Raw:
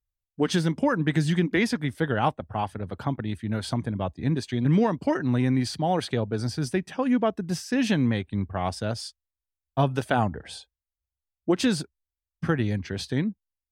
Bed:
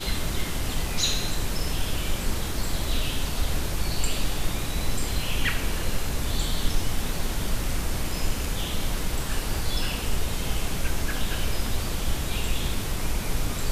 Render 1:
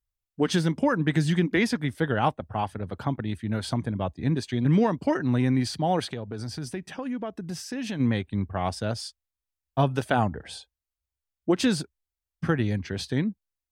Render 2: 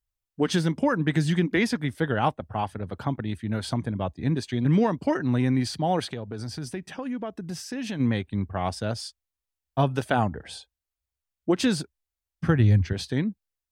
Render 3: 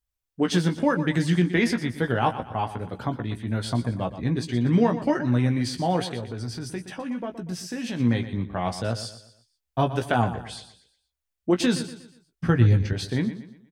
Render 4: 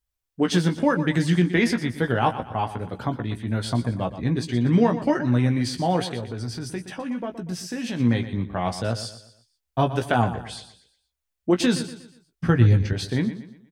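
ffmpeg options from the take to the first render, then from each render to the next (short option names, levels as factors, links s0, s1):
-filter_complex "[0:a]asplit=3[s0][s1][s2];[s0]afade=t=out:st=6.09:d=0.02[s3];[s1]acompressor=threshold=0.0282:ratio=3:attack=3.2:release=140:knee=1:detection=peak,afade=t=in:st=6.09:d=0.02,afade=t=out:st=7.99:d=0.02[s4];[s2]afade=t=in:st=7.99:d=0.02[s5];[s3][s4][s5]amix=inputs=3:normalize=0"
-filter_complex "[0:a]asettb=1/sr,asplit=3[s0][s1][s2];[s0]atrim=end=12.474[s3];[s1]atrim=start=12.47:end=12.93,asetpts=PTS-STARTPTS,afade=t=in:d=0.004:c=qsin,afade=t=out:st=0.456:d=0.004:c=qsin,equalizer=f=87:w=1.1:g=13[s4];[s2]atrim=start=12.926[s5];[s3][s4]acrossfade=d=0.004:c1=hsin:c2=qsin[s6];[s6][s5]acrossfade=d=0.004:c1=qsin:c2=hsin"
-filter_complex "[0:a]asplit=2[s0][s1];[s1]adelay=17,volume=0.447[s2];[s0][s2]amix=inputs=2:normalize=0,aecho=1:1:120|240|360|480:0.237|0.0925|0.0361|0.0141"
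-af "volume=1.19"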